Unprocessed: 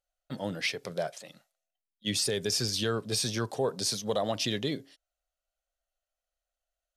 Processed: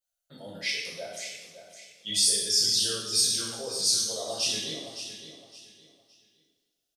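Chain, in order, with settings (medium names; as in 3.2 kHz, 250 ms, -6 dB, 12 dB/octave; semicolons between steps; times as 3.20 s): resonances exaggerated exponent 1.5; pre-emphasis filter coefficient 0.9; feedback delay 563 ms, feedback 28%, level -11 dB; two-slope reverb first 0.87 s, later 2.9 s, from -21 dB, DRR -8 dB; trim +2 dB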